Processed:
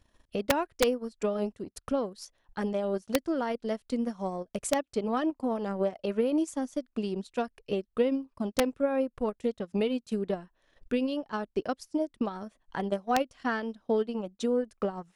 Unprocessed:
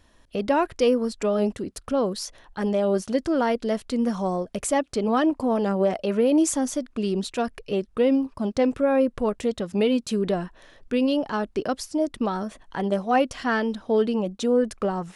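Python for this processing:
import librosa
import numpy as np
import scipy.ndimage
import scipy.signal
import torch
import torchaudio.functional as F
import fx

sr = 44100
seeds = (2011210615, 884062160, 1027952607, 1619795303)

y = fx.transient(x, sr, attack_db=6, sustain_db=-12)
y = (np.mod(10.0 ** (6.0 / 20.0) * y + 1.0, 2.0) - 1.0) / 10.0 ** (6.0 / 20.0)
y = y * librosa.db_to_amplitude(-8.5)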